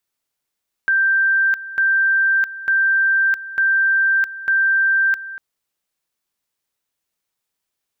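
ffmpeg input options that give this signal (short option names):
-f lavfi -i "aevalsrc='pow(10,(-13-15.5*gte(mod(t,0.9),0.66))/20)*sin(2*PI*1570*t)':d=4.5:s=44100"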